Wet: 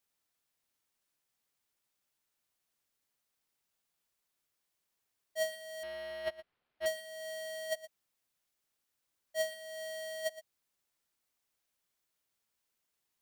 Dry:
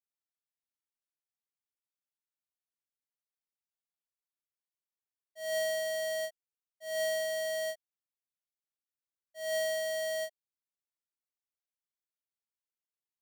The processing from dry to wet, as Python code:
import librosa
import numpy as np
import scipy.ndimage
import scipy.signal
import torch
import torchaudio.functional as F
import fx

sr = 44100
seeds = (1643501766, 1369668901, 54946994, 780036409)

y = fx.over_compress(x, sr, threshold_db=-40.0, ratio=-0.5)
y = y + 10.0 ** (-15.0 / 20.0) * np.pad(y, (int(117 * sr / 1000.0), 0))[:len(y)]
y = fx.resample_linear(y, sr, factor=6, at=(5.83, 6.86))
y = y * 10.0 ** (3.5 / 20.0)